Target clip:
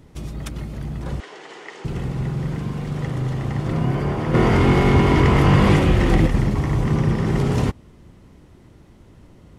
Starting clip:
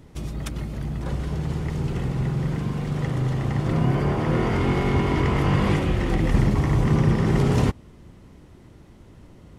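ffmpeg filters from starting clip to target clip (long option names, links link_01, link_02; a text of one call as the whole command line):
ffmpeg -i in.wav -filter_complex "[0:a]asettb=1/sr,asplit=3[link_01][link_02][link_03];[link_01]atrim=end=1.204[link_04];[link_02]atrim=start=1.2:end=1.85,asetpts=PTS-STARTPTS,afade=type=in:duration=0.004:curve=qsin,afade=type=out:start_time=0.646:duration=0.004:curve=qsin,highpass=frequency=410:width=0.5412,highpass=frequency=410:width=1.3066,equalizer=frequency=570:width_type=q:width=4:gain=-5,equalizer=frequency=1900:width_type=q:width=4:gain=6,equalizer=frequency=3000:width_type=q:width=4:gain=4,lowpass=frequency=8100:width=0.5412,lowpass=frequency=8100:width=1.3066[link_05];[link_03]atrim=start=1.846[link_06];[link_04][link_05]acrossfade=duration=0.004:curve1=hsin:curve2=qsin[link_07];[link_07][link_06]acrossfade=duration=0.004:curve1=qsin:curve2=hsin,asettb=1/sr,asplit=3[link_08][link_09][link_10];[link_08]atrim=end=4.344[link_11];[link_09]atrim=start=4.34:end=6.27,asetpts=PTS-STARTPTS,afade=type=in:duration=0.004:curve=qsin,afade=type=out:start_time=1.926:duration=0.004:curve=qsin,acontrast=75[link_12];[link_10]atrim=start=6.266[link_13];[link_11][link_12]acrossfade=duration=0.004:curve1=hsin:curve2=qsin[link_14];[link_14][link_13]acrossfade=duration=0.004:curve1=qsin:curve2=hsin" out.wav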